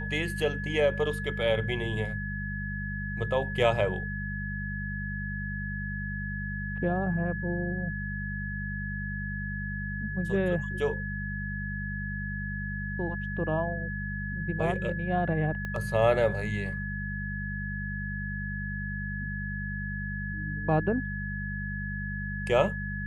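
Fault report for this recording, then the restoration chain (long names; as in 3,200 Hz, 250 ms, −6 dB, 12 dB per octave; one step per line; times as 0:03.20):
mains hum 50 Hz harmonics 4 −35 dBFS
whistle 1,700 Hz −36 dBFS
0:15.65: click −23 dBFS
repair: click removal
notch filter 1,700 Hz, Q 30
hum removal 50 Hz, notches 4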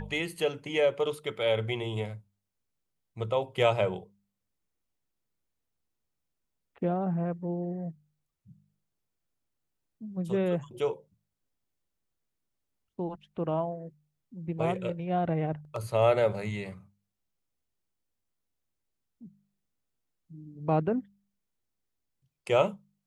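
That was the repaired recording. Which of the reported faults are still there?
0:15.65: click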